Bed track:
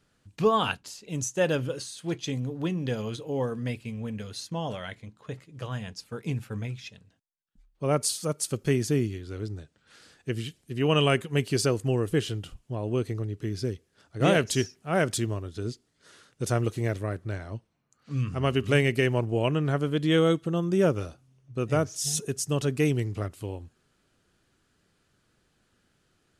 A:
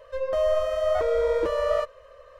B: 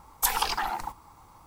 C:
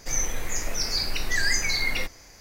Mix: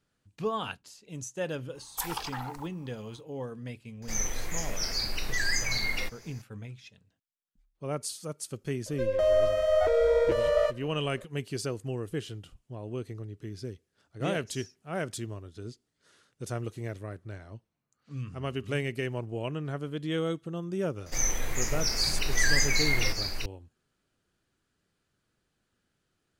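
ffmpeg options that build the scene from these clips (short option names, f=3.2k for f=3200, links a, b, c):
-filter_complex "[3:a]asplit=2[a][b];[0:a]volume=-8.5dB[c];[1:a]equalizer=f=1.1k:w=5.7:g=-12.5[d];[b]aecho=1:1:1186:0.562[e];[2:a]atrim=end=1.46,asetpts=PTS-STARTPTS,volume=-9dB,afade=t=in:d=0.004:c=hsin,afade=t=out:st=1.456:d=0.004:c=hsin,adelay=1750[f];[a]atrim=end=2.4,asetpts=PTS-STARTPTS,volume=-4.5dB,afade=t=in:d=0.004:c=hsin,afade=t=out:st=2.396:d=0.004:c=hsin,adelay=4020[g];[d]atrim=end=2.39,asetpts=PTS-STARTPTS,afade=t=in:d=0.004:c=hsin,afade=t=out:st=2.386:d=0.004:c=hsin,adelay=8860[h];[e]atrim=end=2.4,asetpts=PTS-STARTPTS,volume=-1.5dB,afade=t=in:d=0.004:c=hsin,afade=t=out:st=2.396:d=0.004:c=hsin,adelay=21060[i];[c][f][g][h][i]amix=inputs=5:normalize=0"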